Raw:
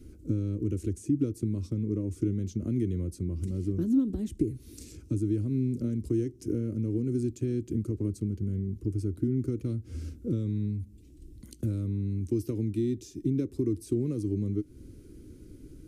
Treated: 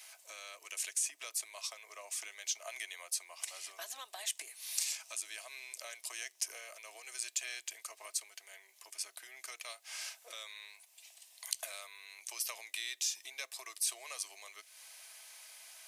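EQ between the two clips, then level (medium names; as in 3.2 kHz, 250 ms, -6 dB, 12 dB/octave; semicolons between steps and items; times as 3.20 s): dynamic bell 870 Hz, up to -7 dB, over -55 dBFS, Q 2.1; rippled Chebyshev high-pass 650 Hz, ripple 3 dB; Butterworth band-stop 1.4 kHz, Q 7; +18.0 dB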